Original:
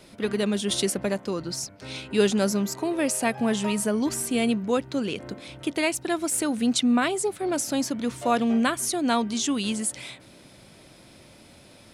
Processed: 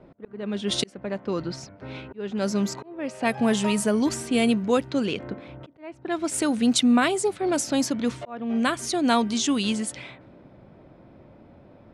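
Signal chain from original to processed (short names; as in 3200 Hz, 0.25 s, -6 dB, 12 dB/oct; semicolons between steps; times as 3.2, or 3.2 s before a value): auto swell 0.541 s; low-pass opened by the level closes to 910 Hz, open at -20.5 dBFS; gain +2.5 dB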